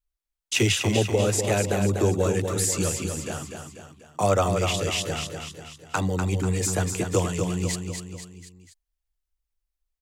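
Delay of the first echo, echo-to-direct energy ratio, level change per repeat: 0.245 s, -4.5 dB, -6.0 dB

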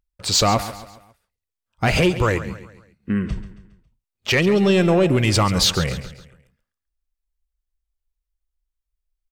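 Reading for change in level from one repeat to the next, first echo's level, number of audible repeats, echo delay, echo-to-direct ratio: -7.0 dB, -14.0 dB, 3, 0.137 s, -13.0 dB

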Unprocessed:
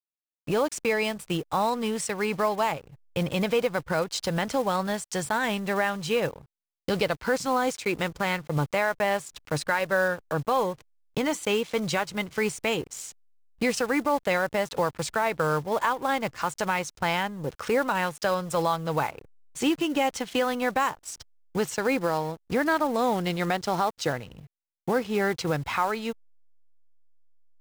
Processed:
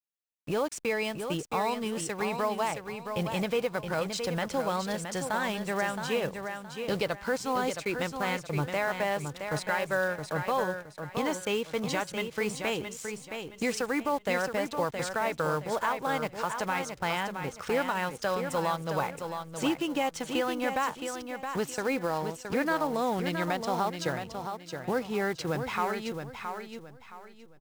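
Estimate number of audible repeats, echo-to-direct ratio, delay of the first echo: 3, -6.5 dB, 0.669 s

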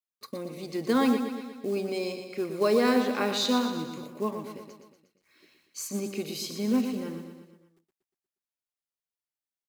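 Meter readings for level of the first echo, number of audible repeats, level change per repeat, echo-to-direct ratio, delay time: -8.0 dB, 5, -5.0 dB, -6.5 dB, 0.119 s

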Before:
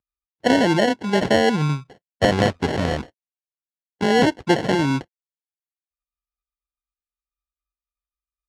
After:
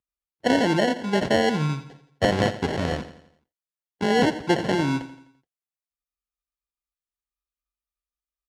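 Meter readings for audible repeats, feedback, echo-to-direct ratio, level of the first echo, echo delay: 4, 47%, -12.5 dB, -13.5 dB, 85 ms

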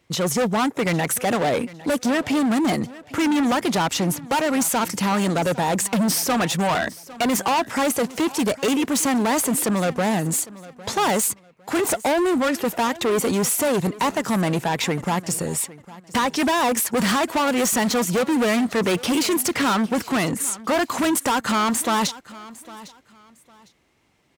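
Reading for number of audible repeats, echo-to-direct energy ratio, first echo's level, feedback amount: 2, -19.0 dB, -19.0 dB, 25%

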